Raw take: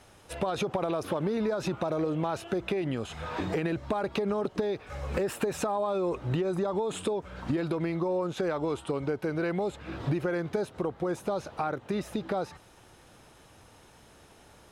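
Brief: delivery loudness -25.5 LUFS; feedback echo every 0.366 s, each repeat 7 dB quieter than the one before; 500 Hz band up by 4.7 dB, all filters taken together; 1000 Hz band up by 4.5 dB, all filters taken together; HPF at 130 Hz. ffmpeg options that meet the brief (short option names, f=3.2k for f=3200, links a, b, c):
-af "highpass=130,equalizer=f=500:t=o:g=5,equalizer=f=1k:t=o:g=4,aecho=1:1:366|732|1098|1464|1830:0.447|0.201|0.0905|0.0407|0.0183,volume=1.5dB"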